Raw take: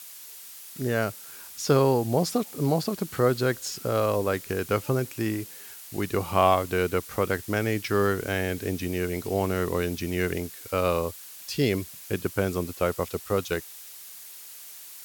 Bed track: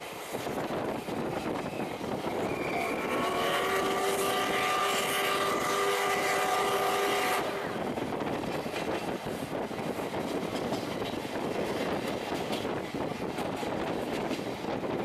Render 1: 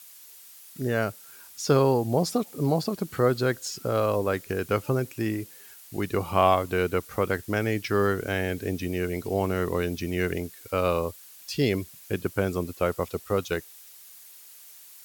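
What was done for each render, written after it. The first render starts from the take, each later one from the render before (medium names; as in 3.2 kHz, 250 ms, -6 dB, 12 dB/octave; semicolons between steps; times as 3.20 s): noise reduction 6 dB, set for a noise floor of -44 dBFS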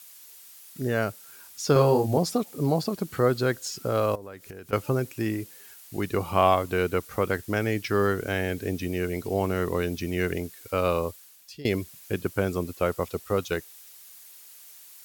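1.73–2.18 s: doubling 28 ms -3 dB; 4.15–4.73 s: compression 4:1, threshold -40 dBFS; 11.07–11.65 s: fade out, to -21.5 dB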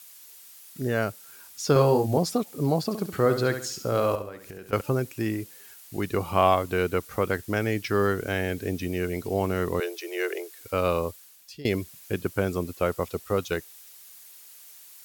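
2.84–4.81 s: flutter echo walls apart 11.8 m, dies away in 0.47 s; 9.80–10.59 s: steep high-pass 340 Hz 96 dB/octave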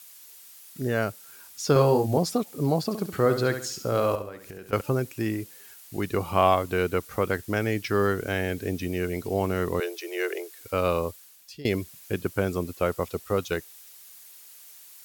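no audible change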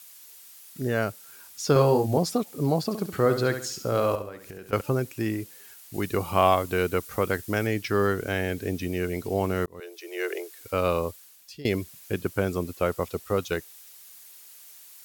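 5.94–7.67 s: treble shelf 5.2 kHz +4.5 dB; 9.66–10.34 s: fade in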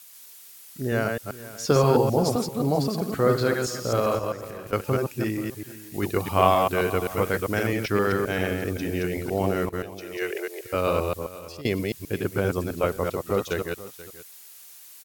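chunks repeated in reverse 131 ms, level -3 dB; delay 482 ms -17 dB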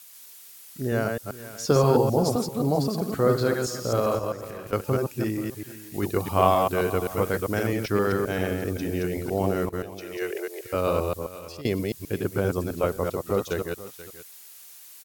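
dynamic bell 2.3 kHz, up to -5 dB, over -42 dBFS, Q 1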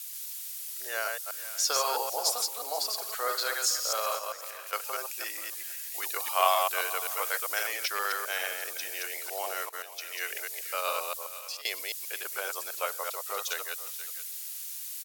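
high-pass 610 Hz 24 dB/octave; tilt shelf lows -8 dB, about 1.4 kHz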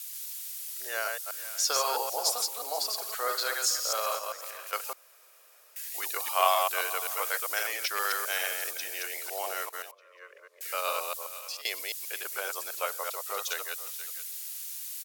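4.93–5.76 s: room tone; 7.97–8.71 s: peaking EQ 11 kHz +4 dB 2.5 oct; 9.91–10.61 s: two resonant band-passes 770 Hz, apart 1 oct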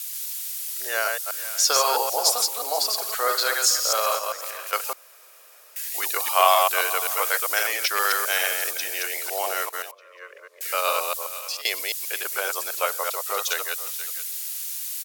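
trim +7.5 dB; peak limiter -3 dBFS, peak gain reduction 1.5 dB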